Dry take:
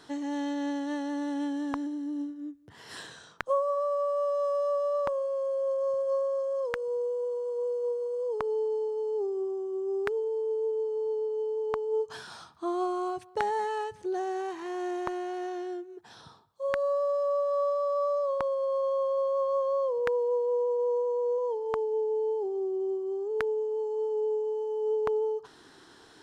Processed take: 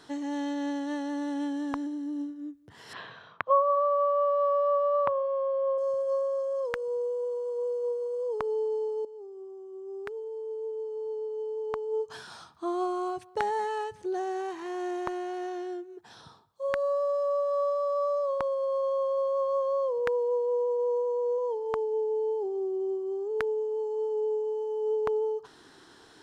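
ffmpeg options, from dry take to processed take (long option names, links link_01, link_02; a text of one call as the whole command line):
ffmpeg -i in.wav -filter_complex "[0:a]asettb=1/sr,asplit=3[link_01][link_02][link_03];[link_01]atrim=end=2.934[link_04];[link_02]atrim=start=2.93:end=5.78,asetpts=PTS-STARTPTS,afade=type=in:duration=0.004:curve=qsin,afade=type=out:start_time=2.846:duration=0.004:curve=qsin,highpass=100,equalizer=frequency=110:width_type=q:width=4:gain=7,equalizer=frequency=320:width_type=q:width=4:gain=-6,equalizer=frequency=650:width_type=q:width=4:gain=4,equalizer=frequency=1100:width_type=q:width=4:gain=8,equalizer=frequency=2300:width_type=q:width=4:gain=4,lowpass=frequency=3500:width=0.5412,lowpass=frequency=3500:width=1.3066[link_05];[link_03]atrim=start=5.776[link_06];[link_04][link_05]acrossfade=duration=0.004:curve1=hsin:curve2=qsin[link_07];[link_07][link_06]acrossfade=duration=0.004:curve1=qsin:curve2=hsin,asplit=2[link_08][link_09];[link_08]atrim=end=9.05,asetpts=PTS-STARTPTS,afade=type=out:start_time=9.046:duration=0.004:curve=hsin:silence=0.177828[link_10];[link_09]atrim=start=9.05,asetpts=PTS-STARTPTS,afade=type=in:duration=3.66:silence=0.177828[link_11];[link_10][link_11]concat=n=2:v=0:a=1" out.wav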